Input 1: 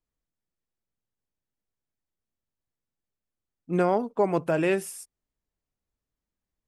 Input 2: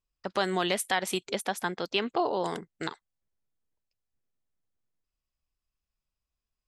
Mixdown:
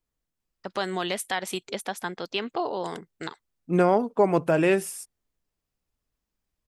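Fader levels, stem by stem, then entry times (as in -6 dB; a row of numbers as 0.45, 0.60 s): +3.0, -1.0 dB; 0.00, 0.40 s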